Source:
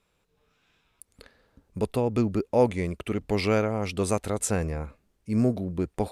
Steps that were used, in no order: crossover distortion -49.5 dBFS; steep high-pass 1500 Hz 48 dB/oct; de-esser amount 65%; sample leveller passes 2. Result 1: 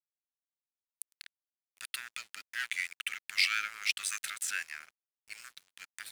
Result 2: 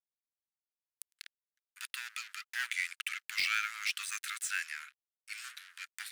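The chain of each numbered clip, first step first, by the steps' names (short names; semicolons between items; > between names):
de-esser > sample leveller > steep high-pass > crossover distortion; crossover distortion > sample leveller > steep high-pass > de-esser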